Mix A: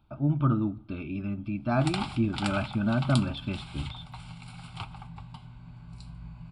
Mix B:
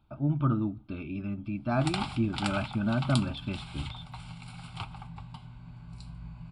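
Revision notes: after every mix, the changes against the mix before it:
speech: send -9.5 dB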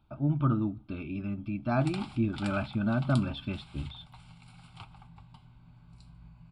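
background -9.0 dB

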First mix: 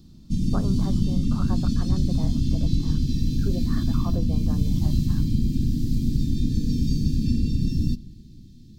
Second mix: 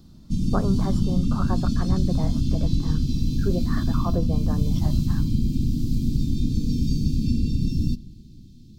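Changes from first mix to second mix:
speech +6.5 dB; background: add band shelf 1300 Hz -12.5 dB 1.3 oct

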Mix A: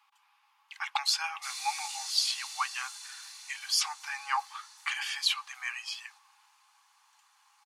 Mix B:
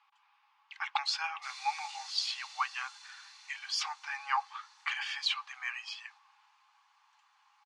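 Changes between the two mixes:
background: send off; master: add air absorption 130 m

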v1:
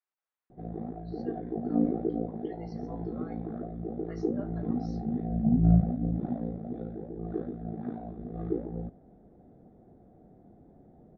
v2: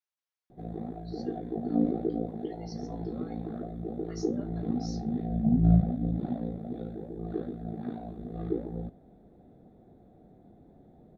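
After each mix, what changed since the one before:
speech -5.0 dB; master: remove LPF 1900 Hz 12 dB/oct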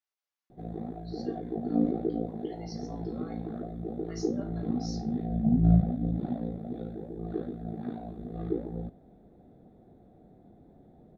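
reverb: on, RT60 0.40 s

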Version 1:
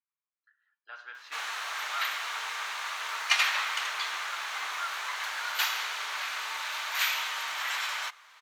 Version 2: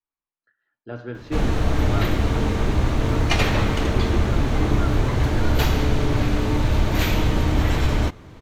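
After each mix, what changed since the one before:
master: remove HPF 1100 Hz 24 dB/oct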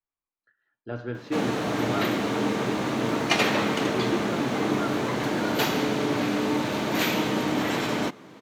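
background: add HPF 180 Hz 24 dB/oct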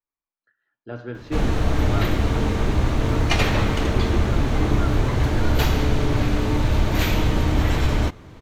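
background: remove HPF 180 Hz 24 dB/oct

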